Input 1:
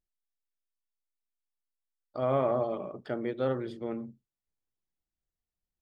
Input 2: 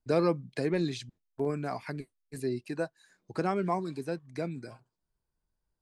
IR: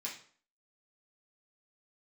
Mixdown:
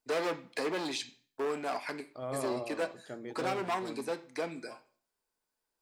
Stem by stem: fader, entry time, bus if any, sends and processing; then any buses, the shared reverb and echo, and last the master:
−10.0 dB, 0.00 s, no send, high-shelf EQ 4,400 Hz +11 dB
+3.0 dB, 0.00 s, send −6 dB, hard clipping −31 dBFS, distortion −6 dB; high-pass filter 380 Hz 12 dB per octave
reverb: on, RT60 0.50 s, pre-delay 3 ms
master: no processing

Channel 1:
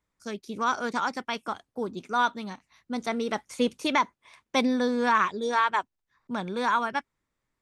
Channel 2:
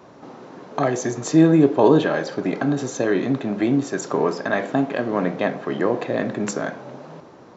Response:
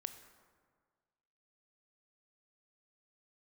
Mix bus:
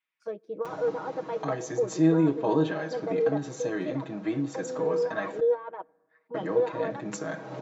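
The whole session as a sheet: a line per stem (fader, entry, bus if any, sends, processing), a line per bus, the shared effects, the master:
+1.5 dB, 0.00 s, send −19.5 dB, high-shelf EQ 4,500 Hz −8.5 dB; compressor whose output falls as the input rises −29 dBFS, ratio −1; envelope filter 500–2,700 Hz, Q 3.1, down, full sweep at −34 dBFS
−7.5 dB, 0.65 s, muted 0:05.40–0:06.34, send −12.5 dB, upward compression, threshold −23 dBFS; automatic ducking −9 dB, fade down 1.35 s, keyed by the first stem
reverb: on, RT60 1.7 s, pre-delay 18 ms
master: comb filter 6.3 ms, depth 91%

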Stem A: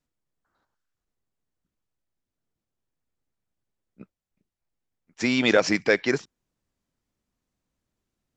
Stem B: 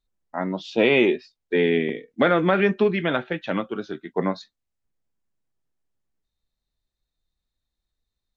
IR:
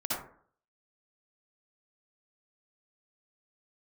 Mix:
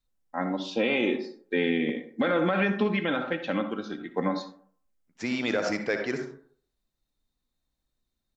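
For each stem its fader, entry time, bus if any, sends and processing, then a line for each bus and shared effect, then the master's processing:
−9.0 dB, 0.00 s, send −8.5 dB, high-shelf EQ 3,700 Hz −7.5 dB; floating-point word with a short mantissa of 8 bits
−5.0 dB, 0.00 s, send −13.5 dB, comb filter 3.8 ms, depth 52%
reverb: on, RT60 0.55 s, pre-delay 52 ms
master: high-shelf EQ 5,100 Hz +5 dB; brickwall limiter −15.5 dBFS, peak gain reduction 7 dB

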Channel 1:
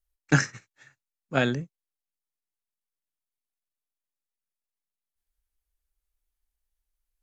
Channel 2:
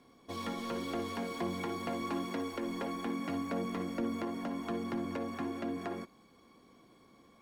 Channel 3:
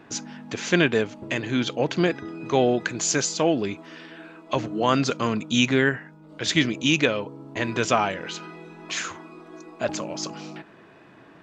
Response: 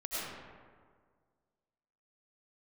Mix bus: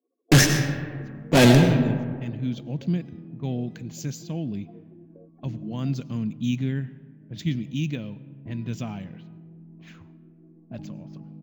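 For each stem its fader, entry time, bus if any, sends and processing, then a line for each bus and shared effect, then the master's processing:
+1.5 dB, 0.00 s, send −6.5 dB, fuzz pedal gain 32 dB, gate −39 dBFS
−14.0 dB, 0.00 s, no send, expanding power law on the bin magnitudes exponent 2.7; four-pole ladder high-pass 320 Hz, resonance 55%; parametric band 610 Hz +15 dB 1.3 octaves
−14.0 dB, 0.90 s, send −22.5 dB, low-pass that shuts in the quiet parts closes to 320 Hz, open at −20.5 dBFS; low shelf with overshoot 280 Hz +13.5 dB, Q 1.5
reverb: on, RT60 1.8 s, pre-delay 60 ms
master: parametric band 1,300 Hz −10 dB 1.2 octaves; linearly interpolated sample-rate reduction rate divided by 2×

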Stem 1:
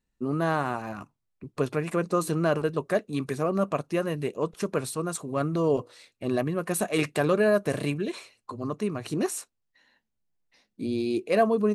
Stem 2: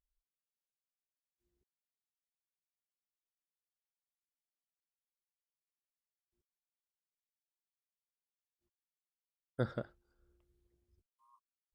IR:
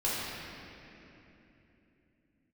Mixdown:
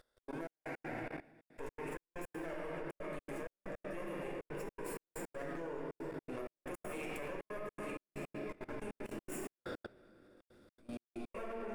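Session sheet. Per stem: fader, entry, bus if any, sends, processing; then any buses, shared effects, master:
−8.5 dB, 0.00 s, send −5 dB, lower of the sound and its delayed copy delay 0.41 ms; parametric band 4,200 Hz −15 dB 0.6 octaves; automatic ducking −6 dB, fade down 0.30 s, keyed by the second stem
−2.5 dB, 0.00 s, send −14.5 dB, compressor on every frequency bin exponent 0.4; high-shelf EQ 3,600 Hz +8.5 dB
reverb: on, RT60 3.2 s, pre-delay 4 ms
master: parametric band 150 Hz −14.5 dB 1.8 octaves; output level in coarse steps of 21 dB; gate pattern "xx.xx..x.xxxxxx." 160 BPM −60 dB

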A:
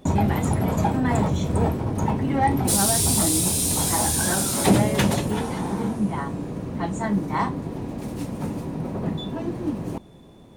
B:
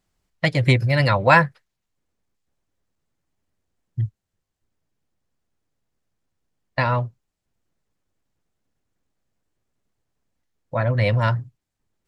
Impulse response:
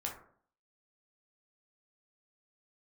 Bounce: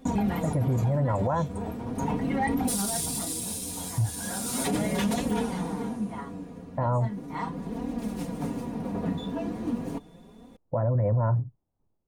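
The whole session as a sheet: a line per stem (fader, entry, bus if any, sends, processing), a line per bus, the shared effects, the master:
0.0 dB, 0.00 s, no send, comb filter 4.2 ms, depth 59%; brickwall limiter −12.5 dBFS, peak gain reduction 9 dB; flanger 0.38 Hz, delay 3.6 ms, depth 8.1 ms, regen +40%; automatic ducking −10 dB, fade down 1.40 s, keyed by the second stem
−5.5 dB, 0.00 s, no send, downward compressor, threshold −18 dBFS, peak gain reduction 9 dB; low-pass filter 1,000 Hz 24 dB per octave; automatic gain control gain up to 9.5 dB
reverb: not used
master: brickwall limiter −18 dBFS, peak gain reduction 9.5 dB

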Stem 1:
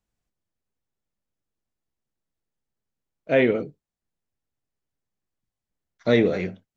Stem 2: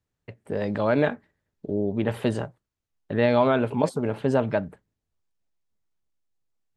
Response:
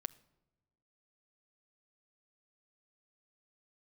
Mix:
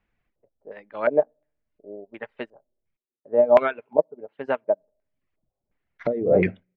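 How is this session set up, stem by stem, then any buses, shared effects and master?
+1.5 dB, 0.00 s, muted 0:02.97–0:04.80, send −18.5 dB, mains-hum notches 60/120 Hz; compressor whose output falls as the input rises −27 dBFS, ratio −1
+2.0 dB, 0.15 s, send −11 dB, Bessel high-pass filter 400 Hz, order 2; expander for the loud parts 2.5 to 1, over −35 dBFS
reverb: on, pre-delay 6 ms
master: reverb reduction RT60 0.58 s; auto-filter low-pass square 1.4 Hz 610–2,200 Hz

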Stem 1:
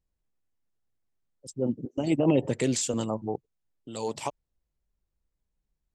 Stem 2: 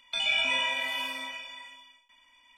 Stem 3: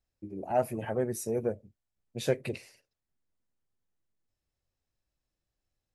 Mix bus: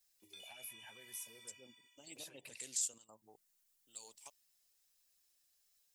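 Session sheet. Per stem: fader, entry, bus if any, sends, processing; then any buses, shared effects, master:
−9.5 dB, 0.00 s, no send, high-shelf EQ 9,300 Hz +11.5 dB; gate pattern "xxxxxx.xxx." 141 BPM −12 dB
−13.5 dB, 0.20 s, no send, downward compressor, threshold −32 dBFS, peak gain reduction 9 dB
−1.5 dB, 0.00 s, no send, brickwall limiter −25 dBFS, peak gain reduction 11 dB; flanger swept by the level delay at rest 5.6 ms, full sweep at −27.5 dBFS; multiband upward and downward compressor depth 70%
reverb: not used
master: first-order pre-emphasis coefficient 0.97

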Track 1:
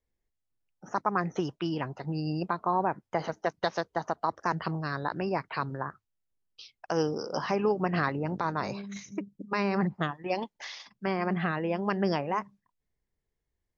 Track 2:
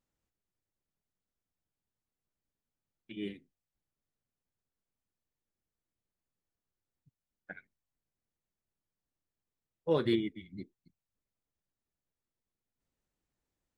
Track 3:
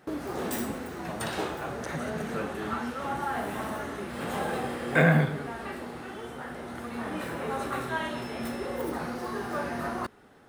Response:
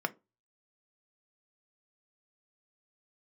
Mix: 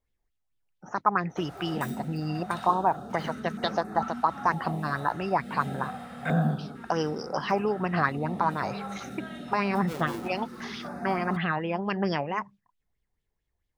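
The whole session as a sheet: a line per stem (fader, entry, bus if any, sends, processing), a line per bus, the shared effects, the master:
−2.5 dB, 0.00 s, no send, low-shelf EQ 170 Hz +6.5 dB; auto-filter bell 4.5 Hz 740–3,500 Hz +12 dB
−13.5 dB, 0.00 s, no send, each half-wave held at its own peak
−3.0 dB, 1.30 s, no send, hollow resonant body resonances 200/730/1,300/3,700 Hz, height 13 dB; notch on a step sequencer 2.2 Hz 240–3,100 Hz; automatic ducking −7 dB, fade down 1.80 s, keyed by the first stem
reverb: not used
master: no processing

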